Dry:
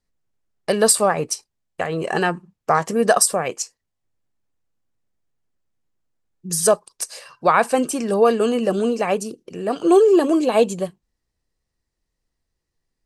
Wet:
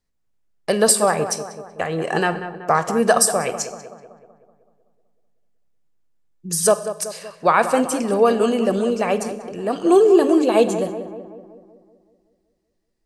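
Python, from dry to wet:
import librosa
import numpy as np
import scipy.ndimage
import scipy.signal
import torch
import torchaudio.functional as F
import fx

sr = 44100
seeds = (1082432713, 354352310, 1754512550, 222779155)

y = fx.echo_filtered(x, sr, ms=189, feedback_pct=57, hz=1900.0, wet_db=-10.5)
y = fx.rev_schroeder(y, sr, rt60_s=0.71, comb_ms=31, drr_db=14.0)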